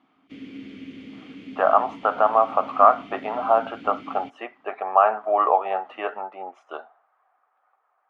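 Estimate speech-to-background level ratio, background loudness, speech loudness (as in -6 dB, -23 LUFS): 19.5 dB, -41.0 LUFS, -21.5 LUFS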